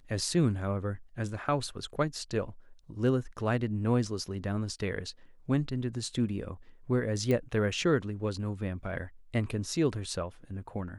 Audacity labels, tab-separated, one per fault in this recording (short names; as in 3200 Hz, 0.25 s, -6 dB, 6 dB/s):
7.310000	7.310000	pop -18 dBFS